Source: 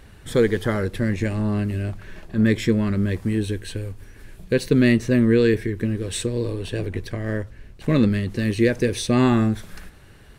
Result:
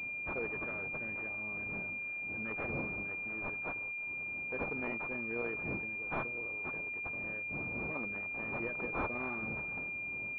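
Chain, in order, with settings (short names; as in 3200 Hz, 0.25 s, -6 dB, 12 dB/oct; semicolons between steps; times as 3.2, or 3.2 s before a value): wind noise 160 Hz -18 dBFS; differentiator; pulse-width modulation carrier 2400 Hz; gain +1.5 dB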